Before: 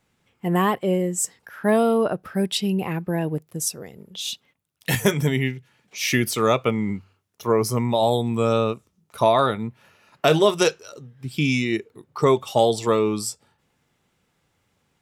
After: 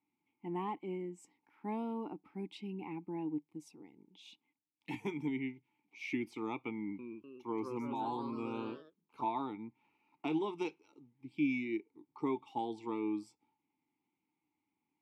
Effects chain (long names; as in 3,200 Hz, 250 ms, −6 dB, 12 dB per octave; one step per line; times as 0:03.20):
formant filter u
0:06.74–0:09.23: delay with pitch and tempo change per echo 249 ms, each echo +2 semitones, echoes 3, each echo −6 dB
level −4 dB